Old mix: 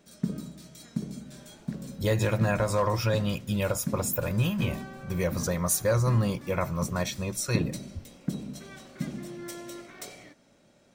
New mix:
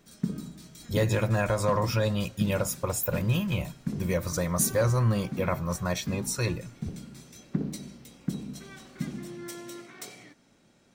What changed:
speech: entry -1.10 s; background: add bell 590 Hz -8 dB 0.36 oct

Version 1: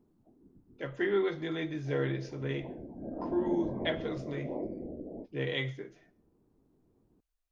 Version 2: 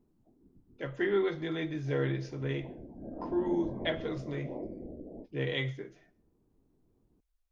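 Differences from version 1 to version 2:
background -3.5 dB; master: add low shelf 77 Hz +7.5 dB

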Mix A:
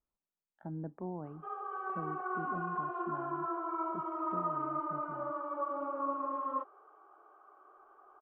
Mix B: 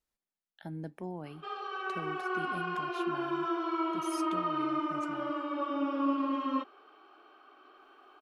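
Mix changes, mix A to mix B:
background: remove HPF 410 Hz 24 dB/oct; master: remove Chebyshev low-pass 1200 Hz, order 3

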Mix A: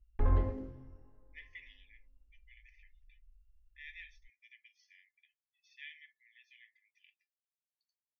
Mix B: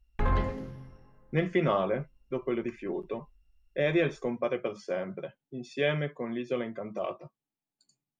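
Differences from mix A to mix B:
speech: remove brick-wall FIR band-pass 1700–6500 Hz; master: remove EQ curve 100 Hz 0 dB, 170 Hz -20 dB, 260 Hz -2 dB, 4300 Hz -18 dB

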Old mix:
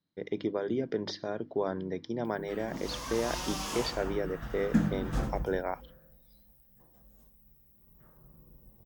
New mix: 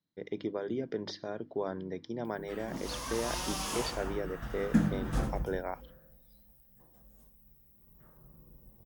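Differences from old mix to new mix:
speech -3.5 dB; master: add bell 9900 Hz +7 dB 0.33 oct

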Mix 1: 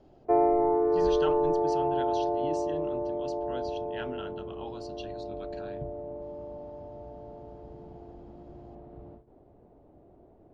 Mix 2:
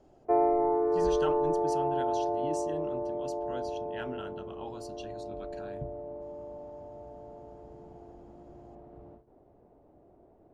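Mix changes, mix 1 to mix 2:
background: add low shelf 350 Hz -5.5 dB; master: remove synth low-pass 4200 Hz, resonance Q 1.6

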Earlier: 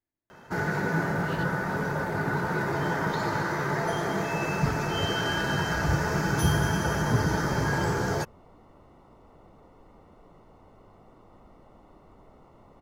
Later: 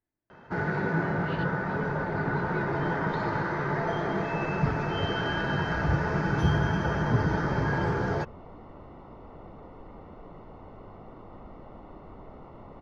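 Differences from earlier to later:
speech +4.0 dB; second sound +8.5 dB; master: add air absorption 240 m

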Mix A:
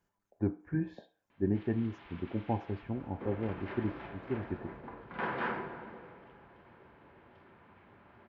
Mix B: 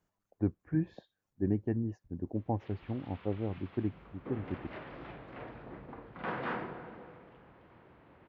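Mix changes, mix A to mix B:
background: entry +1.05 s; reverb: off

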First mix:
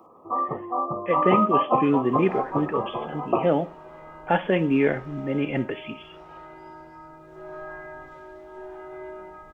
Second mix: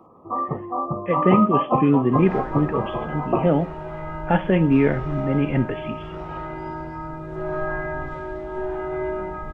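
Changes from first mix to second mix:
second sound +10.5 dB; master: add tone controls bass +10 dB, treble -7 dB

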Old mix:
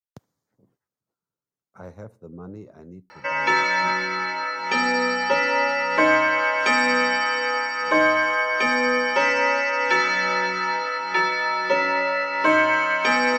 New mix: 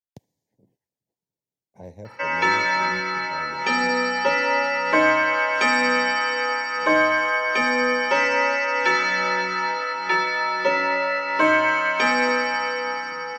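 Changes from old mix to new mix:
speech: add Butterworth band-stop 1300 Hz, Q 1.3; background: entry -1.05 s

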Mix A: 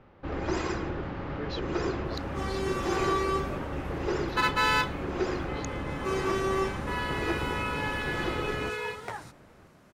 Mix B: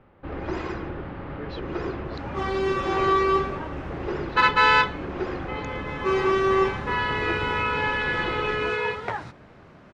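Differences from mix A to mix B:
second sound +8.0 dB; master: add LPF 3400 Hz 12 dB/oct

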